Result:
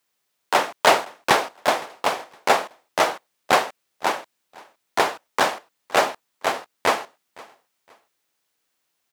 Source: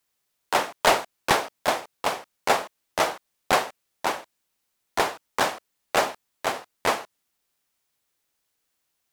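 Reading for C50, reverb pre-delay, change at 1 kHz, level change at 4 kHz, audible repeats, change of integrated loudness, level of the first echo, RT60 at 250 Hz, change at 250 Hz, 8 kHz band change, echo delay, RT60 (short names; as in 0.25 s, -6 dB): none, none, +4.0 dB, +3.0 dB, 2, +3.5 dB, -23.0 dB, none, +2.5 dB, +1.5 dB, 0.514 s, none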